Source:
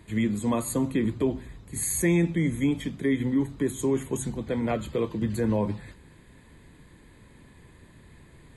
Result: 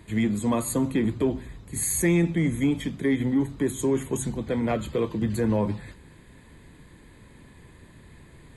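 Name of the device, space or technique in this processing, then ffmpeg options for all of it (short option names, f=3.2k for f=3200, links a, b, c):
parallel distortion: -filter_complex "[0:a]asplit=2[a][b];[b]asoftclip=type=hard:threshold=-26dB,volume=-10.5dB[c];[a][c]amix=inputs=2:normalize=0"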